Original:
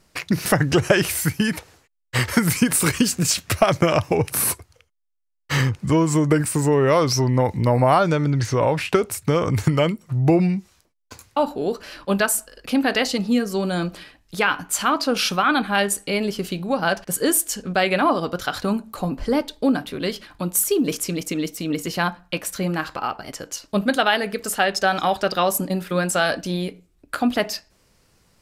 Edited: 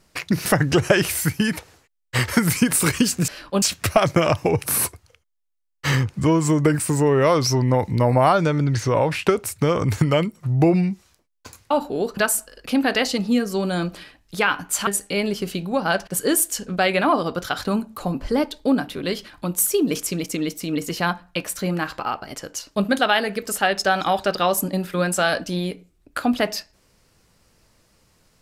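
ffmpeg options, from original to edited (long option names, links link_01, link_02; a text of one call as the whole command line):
ffmpeg -i in.wav -filter_complex "[0:a]asplit=5[link_01][link_02][link_03][link_04][link_05];[link_01]atrim=end=3.282[link_06];[link_02]atrim=start=11.828:end=12.172[link_07];[link_03]atrim=start=3.278:end=11.832[link_08];[link_04]atrim=start=12.168:end=14.872[link_09];[link_05]atrim=start=15.838[link_10];[link_06][link_07]acrossfade=duration=0.004:curve1=hsin:curve2=hsin[link_11];[link_11][link_08]acrossfade=duration=0.004:curve1=hsin:curve2=hsin[link_12];[link_12][link_09]acrossfade=duration=0.004:curve1=hsin:curve2=hsin[link_13];[link_13][link_10]acrossfade=duration=0.004:curve1=hsin:curve2=hsin" out.wav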